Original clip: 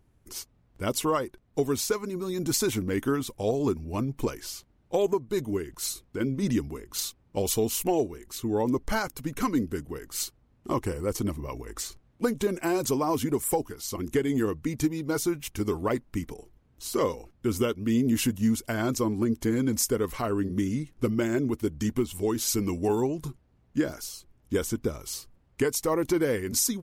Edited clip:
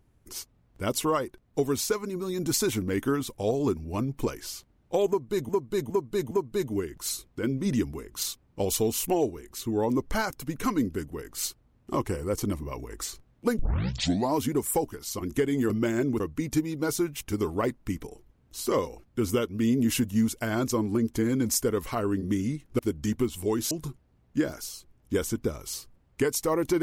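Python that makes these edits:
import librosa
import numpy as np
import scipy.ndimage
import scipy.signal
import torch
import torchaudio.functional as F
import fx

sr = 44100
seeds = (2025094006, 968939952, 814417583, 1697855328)

y = fx.edit(x, sr, fx.repeat(start_s=5.08, length_s=0.41, count=4),
    fx.tape_start(start_s=12.36, length_s=0.79),
    fx.move(start_s=21.06, length_s=0.5, to_s=14.47),
    fx.cut(start_s=22.48, length_s=0.63), tone=tone)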